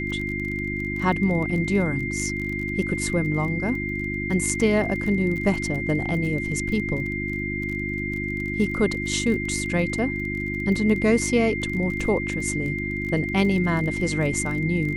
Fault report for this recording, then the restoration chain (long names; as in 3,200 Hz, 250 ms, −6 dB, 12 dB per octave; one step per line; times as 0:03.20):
surface crackle 27 per second −30 dBFS
mains hum 50 Hz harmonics 7 −30 dBFS
whistle 2,100 Hz −29 dBFS
0:04.61: drop-out 3.5 ms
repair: click removal
hum removal 50 Hz, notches 7
notch filter 2,100 Hz, Q 30
repair the gap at 0:04.61, 3.5 ms